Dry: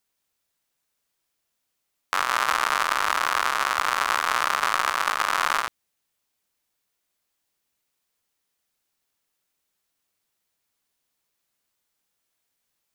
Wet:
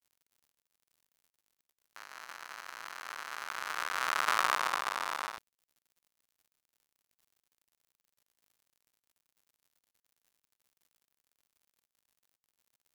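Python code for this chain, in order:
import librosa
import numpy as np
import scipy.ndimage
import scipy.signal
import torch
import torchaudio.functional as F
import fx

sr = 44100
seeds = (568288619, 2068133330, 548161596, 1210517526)

y = fx.doppler_pass(x, sr, speed_mps=27, closest_m=8.7, pass_at_s=4.41)
y = fx.dmg_crackle(y, sr, seeds[0], per_s=280.0, level_db=-43.0)
y = np.sign(y) * np.maximum(np.abs(y) - 10.0 ** (-42.5 / 20.0), 0.0)
y = y * librosa.db_to_amplitude(-5.0)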